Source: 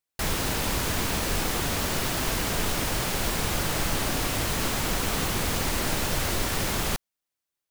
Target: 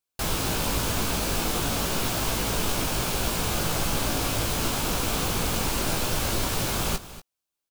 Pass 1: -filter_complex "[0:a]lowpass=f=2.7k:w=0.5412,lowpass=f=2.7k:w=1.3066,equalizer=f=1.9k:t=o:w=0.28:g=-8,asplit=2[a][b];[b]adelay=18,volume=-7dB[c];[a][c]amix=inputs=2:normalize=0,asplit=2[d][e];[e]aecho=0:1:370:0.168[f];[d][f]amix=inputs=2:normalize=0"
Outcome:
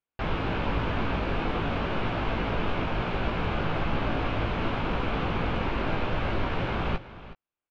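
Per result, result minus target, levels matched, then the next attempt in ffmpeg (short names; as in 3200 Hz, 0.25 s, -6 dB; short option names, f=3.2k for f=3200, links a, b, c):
echo 0.132 s late; 2000 Hz band +3.0 dB
-filter_complex "[0:a]lowpass=f=2.7k:w=0.5412,lowpass=f=2.7k:w=1.3066,equalizer=f=1.9k:t=o:w=0.28:g=-8,asplit=2[a][b];[b]adelay=18,volume=-7dB[c];[a][c]amix=inputs=2:normalize=0,asplit=2[d][e];[e]aecho=0:1:238:0.168[f];[d][f]amix=inputs=2:normalize=0"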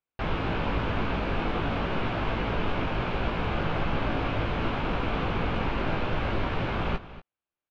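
2000 Hz band +3.0 dB
-filter_complex "[0:a]equalizer=f=1.9k:t=o:w=0.28:g=-8,asplit=2[a][b];[b]adelay=18,volume=-7dB[c];[a][c]amix=inputs=2:normalize=0,asplit=2[d][e];[e]aecho=0:1:238:0.168[f];[d][f]amix=inputs=2:normalize=0"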